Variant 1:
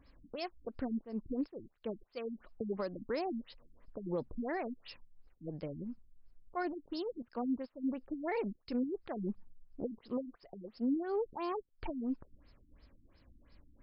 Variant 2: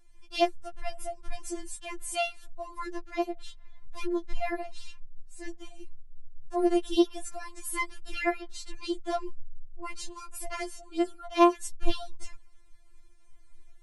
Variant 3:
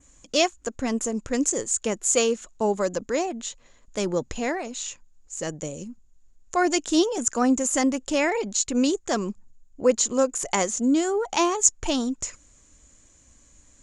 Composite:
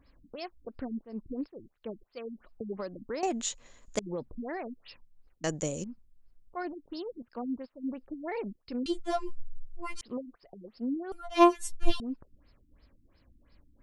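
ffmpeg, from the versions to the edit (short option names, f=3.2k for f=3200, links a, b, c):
-filter_complex "[2:a]asplit=2[a][b];[1:a]asplit=2[c][d];[0:a]asplit=5[e][f][g][h][i];[e]atrim=end=3.232[j];[a]atrim=start=3.228:end=3.992[k];[f]atrim=start=3.988:end=5.442[l];[b]atrim=start=5.438:end=5.842[m];[g]atrim=start=5.838:end=8.862[n];[c]atrim=start=8.858:end=10.012[o];[h]atrim=start=10.008:end=11.122[p];[d]atrim=start=11.118:end=12.002[q];[i]atrim=start=11.998[r];[j][k]acrossfade=d=0.004:c1=hsin:c2=hsin[s];[s][l]acrossfade=d=0.004:c1=hsin:c2=hsin[t];[t][m]acrossfade=d=0.004:c1=hsin:c2=hsin[u];[u][n]acrossfade=d=0.004:c1=hsin:c2=hsin[v];[v][o]acrossfade=d=0.004:c1=hsin:c2=hsin[w];[w][p]acrossfade=d=0.004:c1=hsin:c2=hsin[x];[x][q]acrossfade=d=0.004:c1=hsin:c2=hsin[y];[y][r]acrossfade=d=0.004:c1=hsin:c2=hsin"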